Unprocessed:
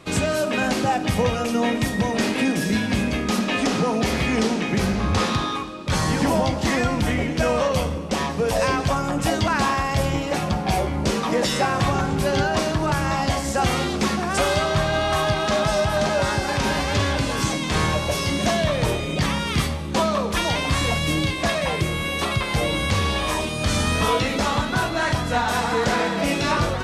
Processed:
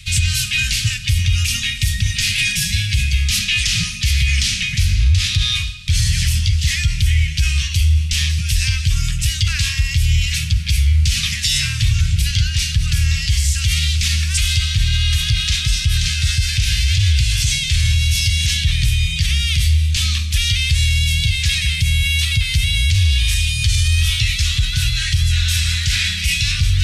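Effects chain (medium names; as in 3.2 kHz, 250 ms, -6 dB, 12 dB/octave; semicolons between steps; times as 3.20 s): inverse Chebyshev band-stop 300–840 Hz, stop band 70 dB; tilt shelf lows +3.5 dB, about 1.3 kHz; reverse; upward compressor, threshold -24 dBFS; reverse; loudness maximiser +19 dB; trim -6 dB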